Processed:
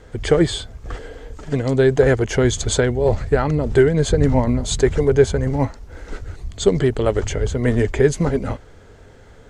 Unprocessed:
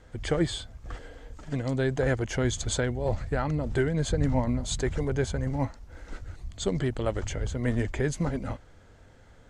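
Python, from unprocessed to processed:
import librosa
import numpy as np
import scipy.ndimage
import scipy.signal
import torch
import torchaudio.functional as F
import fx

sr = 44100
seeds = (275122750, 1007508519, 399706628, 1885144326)

y = fx.peak_eq(x, sr, hz=420.0, db=9.0, octaves=0.27)
y = y * librosa.db_to_amplitude(8.5)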